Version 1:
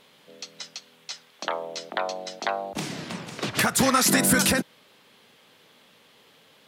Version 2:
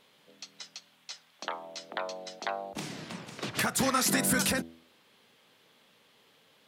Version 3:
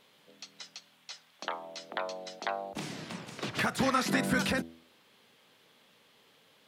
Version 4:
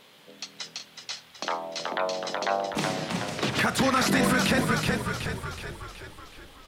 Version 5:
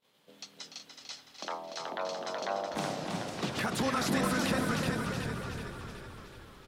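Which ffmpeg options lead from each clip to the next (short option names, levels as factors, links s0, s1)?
-af "bandreject=f=82.36:t=h:w=4,bandreject=f=164.72:t=h:w=4,bandreject=f=247.08:t=h:w=4,bandreject=f=329.44:t=h:w=4,bandreject=f=411.8:t=h:w=4,bandreject=f=494.16:t=h:w=4,bandreject=f=576.52:t=h:w=4,bandreject=f=658.88:t=h:w=4,bandreject=f=741.24:t=h:w=4,volume=0.473"
-filter_complex "[0:a]acrossover=split=4400[s0][s1];[s1]acompressor=threshold=0.00631:ratio=4:attack=1:release=60[s2];[s0][s2]amix=inputs=2:normalize=0"
-filter_complex "[0:a]asplit=8[s0][s1][s2][s3][s4][s5][s6][s7];[s1]adelay=373,afreqshift=-37,volume=0.447[s8];[s2]adelay=746,afreqshift=-74,volume=0.245[s9];[s3]adelay=1119,afreqshift=-111,volume=0.135[s10];[s4]adelay=1492,afreqshift=-148,volume=0.0741[s11];[s5]adelay=1865,afreqshift=-185,volume=0.0407[s12];[s6]adelay=2238,afreqshift=-222,volume=0.0224[s13];[s7]adelay=2611,afreqshift=-259,volume=0.0123[s14];[s0][s8][s9][s10][s11][s12][s13][s14]amix=inputs=8:normalize=0,alimiter=limit=0.075:level=0:latency=1:release=50,volume=2.82"
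-filter_complex "[0:a]asplit=2[s0][s1];[s1]adelay=293,lowpass=f=4700:p=1,volume=0.562,asplit=2[s2][s3];[s3]adelay=293,lowpass=f=4700:p=1,volume=0.54,asplit=2[s4][s5];[s5]adelay=293,lowpass=f=4700:p=1,volume=0.54,asplit=2[s6][s7];[s7]adelay=293,lowpass=f=4700:p=1,volume=0.54,asplit=2[s8][s9];[s9]adelay=293,lowpass=f=4700:p=1,volume=0.54,asplit=2[s10][s11];[s11]adelay=293,lowpass=f=4700:p=1,volume=0.54,asplit=2[s12][s13];[s13]adelay=293,lowpass=f=4700:p=1,volume=0.54[s14];[s2][s4][s6][s8][s10][s12][s14]amix=inputs=7:normalize=0[s15];[s0][s15]amix=inputs=2:normalize=0,agate=range=0.0794:threshold=0.00224:ratio=16:detection=peak,equalizer=f=2100:t=o:w=1.4:g=-3.5,volume=0.447"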